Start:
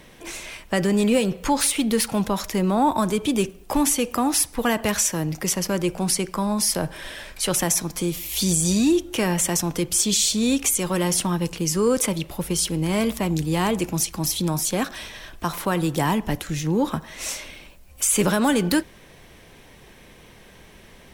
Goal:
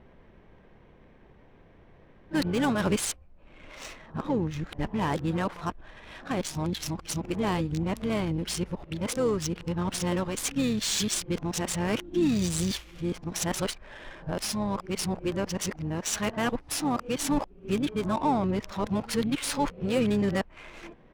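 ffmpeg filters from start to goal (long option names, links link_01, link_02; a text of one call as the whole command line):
ffmpeg -i in.wav -filter_complex "[0:a]areverse,asplit=3[link_01][link_02][link_03];[link_02]asetrate=22050,aresample=44100,atempo=2,volume=-13dB[link_04];[link_03]asetrate=29433,aresample=44100,atempo=1.49831,volume=-16dB[link_05];[link_01][link_04][link_05]amix=inputs=3:normalize=0,adynamicsmooth=sensitivity=3.5:basefreq=1400,volume=-6dB" out.wav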